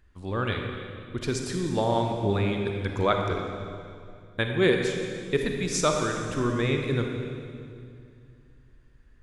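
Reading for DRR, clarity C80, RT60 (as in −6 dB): 2.5 dB, 4.5 dB, 2.4 s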